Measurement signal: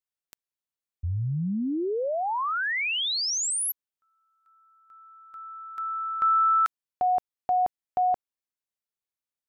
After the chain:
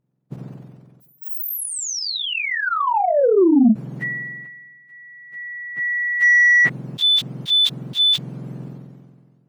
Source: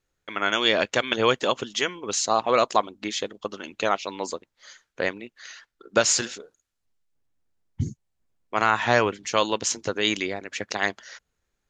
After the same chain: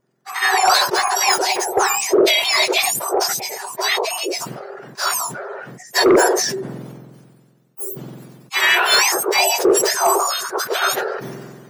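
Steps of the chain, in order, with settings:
frequency axis turned over on the octave scale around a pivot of 1,600 Hz
harmonic generator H 5 −9 dB, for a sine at −5 dBFS
level that may fall only so fast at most 33 dB per second

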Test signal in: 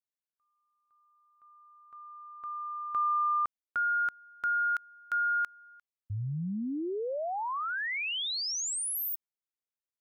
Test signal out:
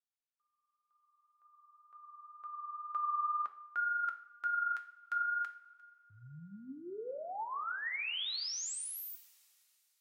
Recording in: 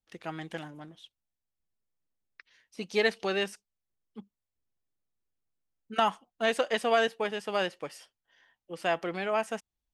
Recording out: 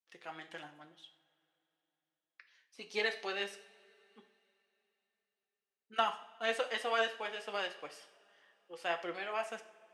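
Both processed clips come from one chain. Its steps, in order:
meter weighting curve A
flanger 2 Hz, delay 4.3 ms, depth 4.1 ms, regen +52%
coupled-rooms reverb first 0.55 s, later 3.4 s, from −20 dB, DRR 7.5 dB
level −2.5 dB

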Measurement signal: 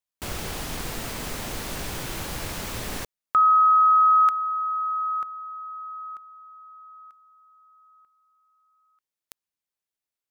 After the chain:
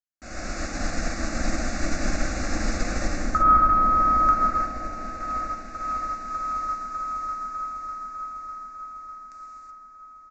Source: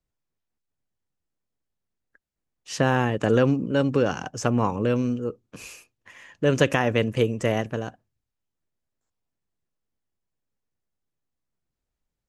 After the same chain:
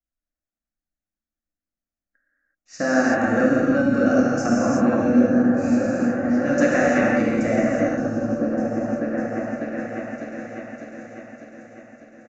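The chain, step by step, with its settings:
downsampling to 16,000 Hz
phaser with its sweep stopped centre 640 Hz, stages 8
on a send: echo whose low-pass opens from repeat to repeat 600 ms, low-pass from 200 Hz, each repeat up 1 octave, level 0 dB
on the sum: reverb whose tail is shaped and stops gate 400 ms flat, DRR −6 dB
in parallel at −2 dB: brickwall limiter −15 dBFS
on the sum: expander for the loud parts 1.5 to 1, over −36 dBFS
level −1.5 dB

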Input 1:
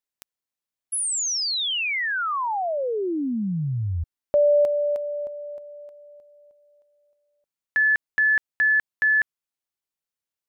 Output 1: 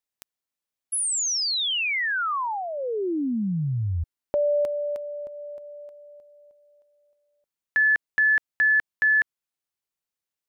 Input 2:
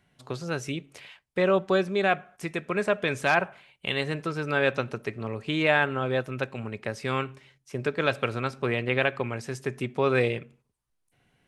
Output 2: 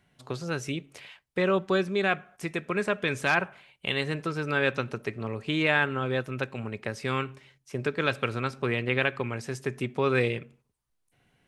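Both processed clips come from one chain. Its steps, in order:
dynamic equaliser 660 Hz, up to −6 dB, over −37 dBFS, Q 2

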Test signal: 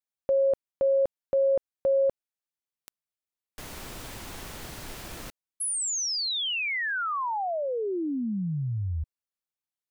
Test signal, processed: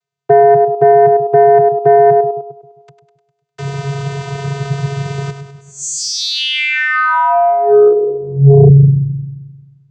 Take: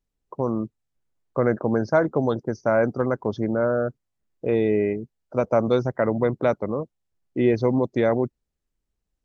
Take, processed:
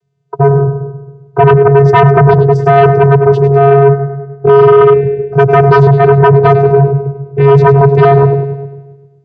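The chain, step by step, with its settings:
echo with a time of its own for lows and highs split 400 Hz, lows 132 ms, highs 101 ms, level −9 dB
channel vocoder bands 16, square 139 Hz
sine wavefolder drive 12 dB, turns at −7 dBFS
level +5.5 dB

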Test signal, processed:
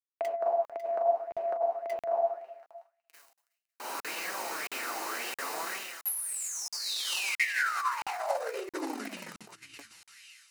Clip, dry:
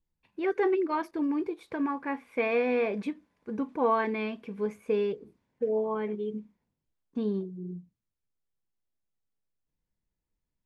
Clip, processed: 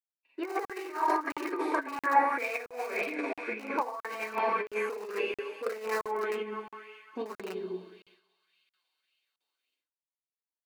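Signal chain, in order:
feedback echo with a high-pass in the loop 185 ms, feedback 84%, high-pass 1,000 Hz, level −10.5 dB
four-comb reverb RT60 0.98 s, combs from 33 ms, DRR −3.5 dB
in parallel at −10 dB: wrap-around overflow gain 20.5 dB
on the sum: flanger 0.69 Hz, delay 5 ms, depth 4.5 ms, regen +51%
downward expander −57 dBFS
dynamic equaliser 2,900 Hz, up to −5 dB, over −51 dBFS, Q 3.2
compressor whose output falls as the input rises −32 dBFS, ratio −0.5
high-pass filter 320 Hz 24 dB per octave
notch filter 3,400 Hz, Q 6.9
regular buffer underruns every 0.67 s, samples 2,048, zero, from 0:00.65
auto-filter bell 1.8 Hz 810–2,800 Hz +12 dB

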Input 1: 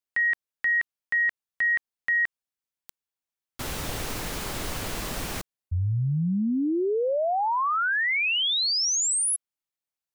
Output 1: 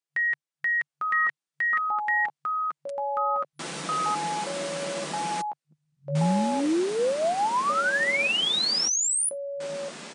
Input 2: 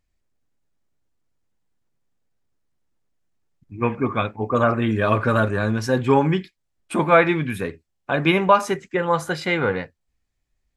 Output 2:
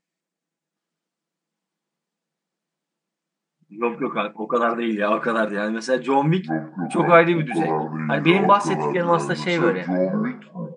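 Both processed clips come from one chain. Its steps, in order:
comb filter 6 ms, depth 39%
delay with pitch and tempo change per echo 768 ms, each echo −7 semitones, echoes 3
brick-wall band-pass 140–10,000 Hz
level −1 dB

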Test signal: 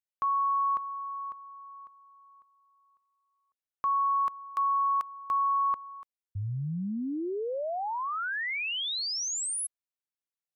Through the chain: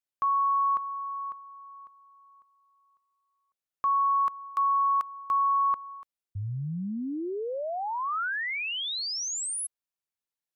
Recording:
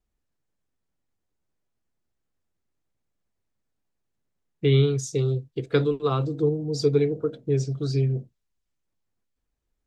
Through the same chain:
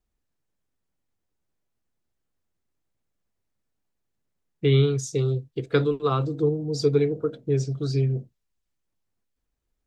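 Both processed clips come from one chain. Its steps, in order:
dynamic equaliser 1,300 Hz, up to +3 dB, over −42 dBFS, Q 1.9

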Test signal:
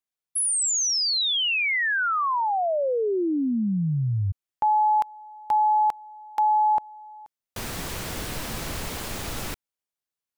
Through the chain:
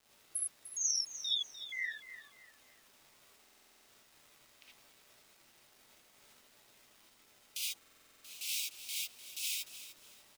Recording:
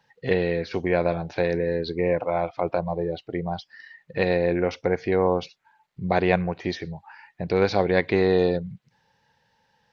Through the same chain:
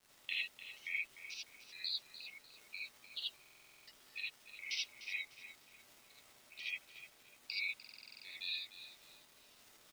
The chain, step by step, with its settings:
Butterworth high-pass 2,400 Hz 48 dB per octave
gate on every frequency bin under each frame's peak −15 dB strong
downward compressor, threshold −38 dBFS
gate pattern "...x....xx" 157 BPM −60 dB
surface crackle 420 per second −53 dBFS
on a send: repeating echo 299 ms, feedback 31%, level −13 dB
on the sum: reverb whose tail is shaped and stops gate 100 ms rising, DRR −4.5 dB
buffer that repeats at 0:03.41/0:07.78, samples 2,048, times 9

